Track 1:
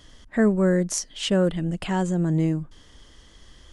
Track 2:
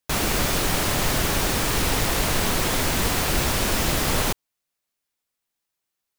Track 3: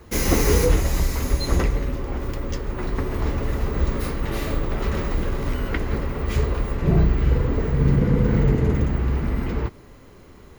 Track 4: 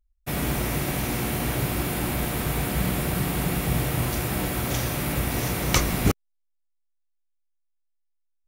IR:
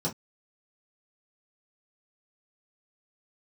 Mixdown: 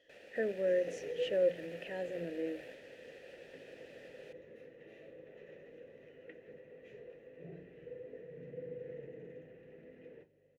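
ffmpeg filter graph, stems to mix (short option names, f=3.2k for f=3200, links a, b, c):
-filter_complex "[0:a]bandreject=f=60:t=h:w=6,bandreject=f=120:t=h:w=6,bandreject=f=180:t=h:w=6,volume=-2dB,asplit=3[a][b][c];[b]volume=-20dB[d];[1:a]alimiter=limit=-15.5dB:level=0:latency=1:release=348,volume=-15dB[e];[2:a]adynamicequalizer=threshold=0.0126:dfrequency=610:dqfactor=1.1:tfrequency=610:tqfactor=1.1:attack=5:release=100:ratio=0.375:range=2:mode=cutabove:tftype=bell,aeval=exprs='val(0)+0.02*(sin(2*PI*50*n/s)+sin(2*PI*2*50*n/s)/2+sin(2*PI*3*50*n/s)/3+sin(2*PI*4*50*n/s)/4+sin(2*PI*5*50*n/s)/5)':c=same,adelay=550,volume=-15.5dB,asplit=2[f][g];[g]volume=-9.5dB[h];[3:a]acrusher=bits=3:mix=0:aa=0.5,volume=-11.5dB[i];[c]apad=whole_len=373744[j];[i][j]sidechaingate=range=-33dB:threshold=-41dB:ratio=16:detection=peak[k];[4:a]atrim=start_sample=2205[l];[d][h]amix=inputs=2:normalize=0[m];[m][l]afir=irnorm=-1:irlink=0[n];[a][e][f][k][n]amix=inputs=5:normalize=0,asplit=3[o][p][q];[o]bandpass=f=530:t=q:w=8,volume=0dB[r];[p]bandpass=f=1.84k:t=q:w=8,volume=-6dB[s];[q]bandpass=f=2.48k:t=q:w=8,volume=-9dB[t];[r][s][t]amix=inputs=3:normalize=0"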